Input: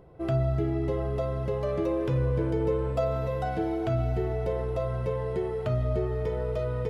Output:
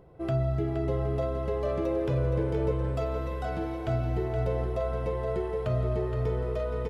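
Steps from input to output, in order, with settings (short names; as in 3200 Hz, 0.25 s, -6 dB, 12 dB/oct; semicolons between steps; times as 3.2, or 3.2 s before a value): 2.71–3.88 bell 500 Hz -12.5 dB 0.69 oct; on a send: feedback echo 0.47 s, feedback 56%, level -7.5 dB; on the sum: gain -1.5 dB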